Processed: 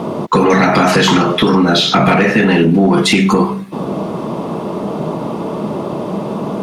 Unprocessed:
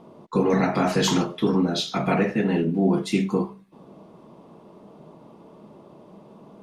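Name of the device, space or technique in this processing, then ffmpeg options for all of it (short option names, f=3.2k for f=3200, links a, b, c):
mastering chain: -filter_complex "[0:a]highpass=59,equalizer=f=1.3k:t=o:w=0.21:g=2.5,acrossover=split=1000|3200[a][b][c];[a]acompressor=threshold=-29dB:ratio=4[d];[b]acompressor=threshold=-32dB:ratio=4[e];[c]acompressor=threshold=-44dB:ratio=4[f];[d][e][f]amix=inputs=3:normalize=0,acompressor=threshold=-33dB:ratio=2,asoftclip=type=tanh:threshold=-24dB,asoftclip=type=hard:threshold=-27dB,alimiter=level_in=30dB:limit=-1dB:release=50:level=0:latency=1,volume=-3dB"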